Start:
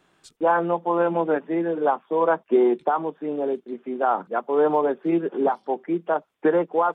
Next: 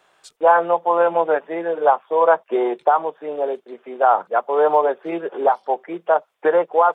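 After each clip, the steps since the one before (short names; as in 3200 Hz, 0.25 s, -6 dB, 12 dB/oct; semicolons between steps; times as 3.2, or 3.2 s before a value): resonant low shelf 390 Hz -12 dB, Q 1.5; gain +4.5 dB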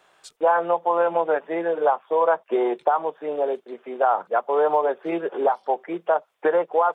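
compressor 2:1, threshold -19 dBFS, peak gain reduction 6 dB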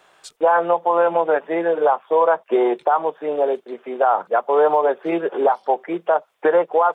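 maximiser +10.5 dB; gain -6 dB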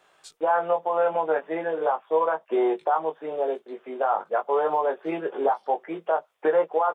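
doubler 19 ms -5 dB; gain -7.5 dB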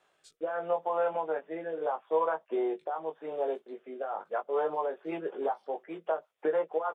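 rotary speaker horn 0.8 Hz, later 6.3 Hz, at 3.99; gain -5 dB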